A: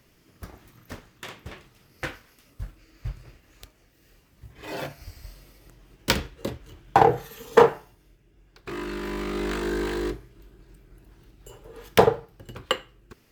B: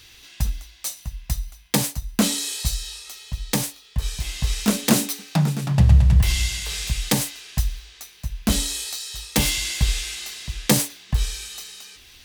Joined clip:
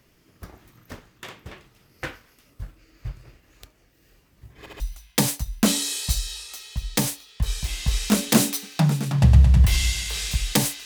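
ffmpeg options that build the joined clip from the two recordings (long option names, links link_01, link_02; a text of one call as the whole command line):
ffmpeg -i cue0.wav -i cue1.wav -filter_complex "[0:a]apad=whole_dur=10.85,atrim=end=10.85,asplit=3[link_01][link_02][link_03];[link_01]atrim=end=4.662[link_04];[link_02]atrim=start=4.588:end=4.662[link_05];[link_03]atrim=start=4.588:end=4.662[link_06];[1:a]atrim=start=1.358:end=7.41[link_07];[link_04][link_05]acrossfade=duration=0.004:curve1=hsin:curve2=hsin[link_08];[link_08][link_06]acrossfade=duration=0.004:curve1=hsin:curve2=hsin[link_09];[link_09][link_07]acrossfade=duration=0.004:curve1=hsin:curve2=hsin" out.wav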